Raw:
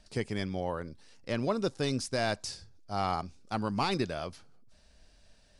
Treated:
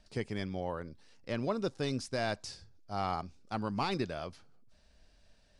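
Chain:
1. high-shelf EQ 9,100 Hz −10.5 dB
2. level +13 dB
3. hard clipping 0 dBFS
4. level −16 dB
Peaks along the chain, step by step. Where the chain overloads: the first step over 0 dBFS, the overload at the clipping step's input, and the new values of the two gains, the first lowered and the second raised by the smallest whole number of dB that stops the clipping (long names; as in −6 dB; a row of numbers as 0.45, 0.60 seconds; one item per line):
−17.5, −4.5, −4.5, −20.5 dBFS
no step passes full scale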